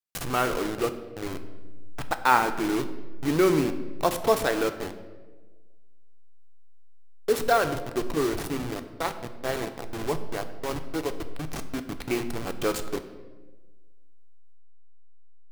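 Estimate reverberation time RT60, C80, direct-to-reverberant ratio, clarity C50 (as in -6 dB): 1.3 s, 13.0 dB, 8.0 dB, 11.5 dB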